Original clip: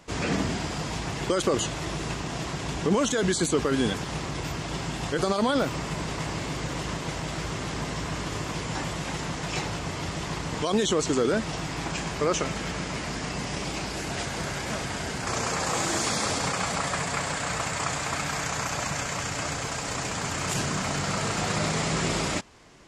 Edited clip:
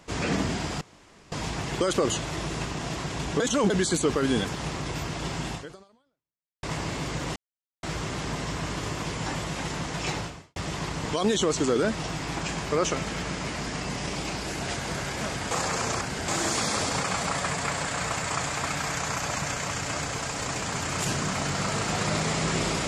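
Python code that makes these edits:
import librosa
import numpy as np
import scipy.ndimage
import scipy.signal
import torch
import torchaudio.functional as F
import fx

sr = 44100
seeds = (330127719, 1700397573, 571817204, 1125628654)

y = fx.edit(x, sr, fx.insert_room_tone(at_s=0.81, length_s=0.51),
    fx.reverse_span(start_s=2.89, length_s=0.3),
    fx.fade_out_span(start_s=5.0, length_s=1.12, curve='exp'),
    fx.silence(start_s=6.85, length_s=0.47),
    fx.fade_out_span(start_s=9.69, length_s=0.36, curve='qua'),
    fx.reverse_span(start_s=15.0, length_s=0.77), tone=tone)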